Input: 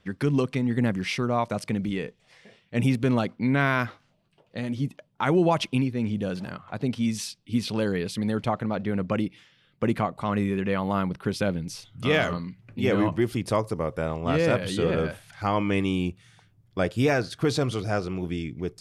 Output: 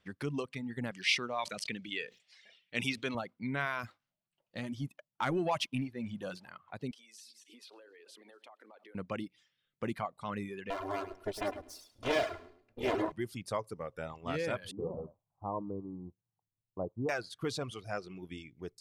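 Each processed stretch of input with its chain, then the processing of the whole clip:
0.91–3.15 s: frequency weighting D + decay stretcher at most 130 dB/s
3.83–6.38 s: waveshaping leveller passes 1 + band-stop 440 Hz, Q 5.6
6.91–8.95 s: backward echo that repeats 133 ms, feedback 50%, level -14 dB + steep high-pass 300 Hz + compression 10:1, threshold -41 dBFS
10.70–13.12 s: comb filter that takes the minimum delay 2.9 ms + peaking EQ 560 Hz +9 dB 1 oct + feedback delay 105 ms, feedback 26%, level -6 dB
14.71–17.09 s: companding laws mixed up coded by A + steep low-pass 1.1 kHz 72 dB/octave
whole clip: bass shelf 470 Hz -5.5 dB; reverb removal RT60 1.4 s; trim -8 dB

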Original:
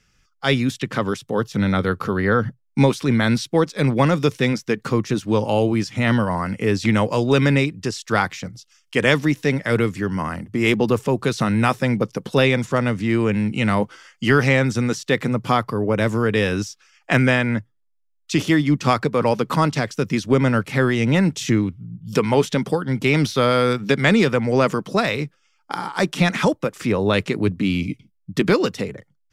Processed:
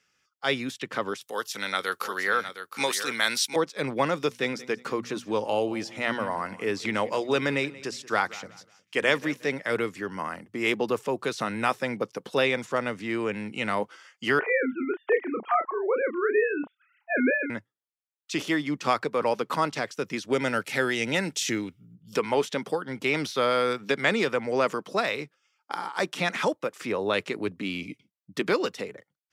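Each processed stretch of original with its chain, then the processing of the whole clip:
1.21–3.56 s: tilt EQ +4.5 dB/octave + delay 712 ms -10 dB
4.21–9.49 s: hum notches 60/120/180/240 Hz + feedback delay 181 ms, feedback 31%, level -19 dB
14.39–17.50 s: formants replaced by sine waves + low-pass 2.2 kHz + doubling 31 ms -6.5 dB
20.32–21.95 s: treble shelf 2.9 kHz +9 dB + band-stop 1.1 kHz, Q 5.1
whole clip: high-pass 97 Hz; tone controls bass -14 dB, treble -2 dB; trim -5 dB

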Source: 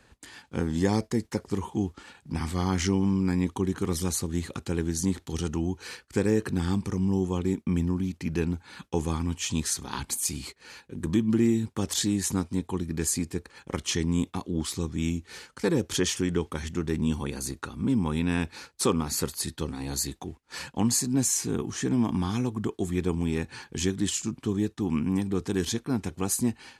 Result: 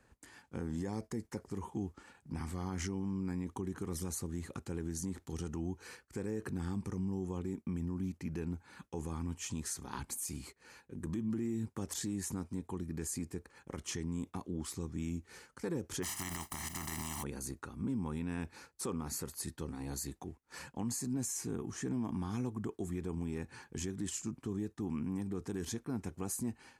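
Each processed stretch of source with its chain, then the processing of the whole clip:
16.02–17.22 s: spectral contrast reduction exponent 0.3 + comb 1 ms, depth 98%
whole clip: peaking EQ 3.6 kHz -8.5 dB 1.1 oct; peak limiter -21 dBFS; trim -7.5 dB

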